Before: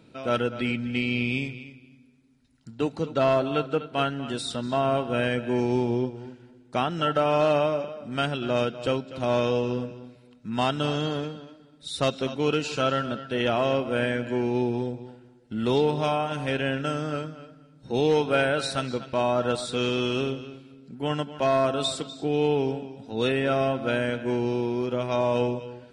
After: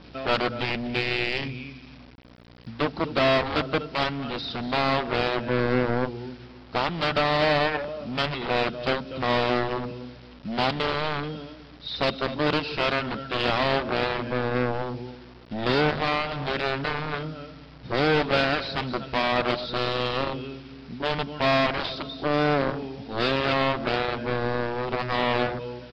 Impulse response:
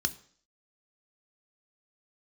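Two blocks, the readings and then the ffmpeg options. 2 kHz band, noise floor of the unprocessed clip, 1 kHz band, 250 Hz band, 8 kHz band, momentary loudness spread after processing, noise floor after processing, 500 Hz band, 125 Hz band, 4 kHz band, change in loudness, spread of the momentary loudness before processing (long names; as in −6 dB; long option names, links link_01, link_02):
+5.0 dB, −55 dBFS, +2.5 dB, −1.5 dB, below −10 dB, 13 LU, −47 dBFS, −1.5 dB, −0.5 dB, +4.0 dB, +0.5 dB, 11 LU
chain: -af "adynamicequalizer=threshold=0.01:dfrequency=2100:dqfactor=0.78:tfrequency=2100:tqfactor=0.78:attack=5:release=100:ratio=0.375:range=2:mode=cutabove:tftype=bell,aeval=exprs='0.211*(cos(1*acos(clip(val(0)/0.211,-1,1)))-cos(1*PI/2))+0.0841*(cos(7*acos(clip(val(0)/0.211,-1,1)))-cos(7*PI/2))':channel_layout=same,aeval=exprs='val(0)+0.00282*(sin(2*PI*60*n/s)+sin(2*PI*2*60*n/s)/2+sin(2*PI*3*60*n/s)/3+sin(2*PI*4*60*n/s)/4+sin(2*PI*5*60*n/s)/5)':channel_layout=same,aresample=11025,acrusher=bits=7:mix=0:aa=0.000001,aresample=44100,acontrast=63,volume=-6.5dB"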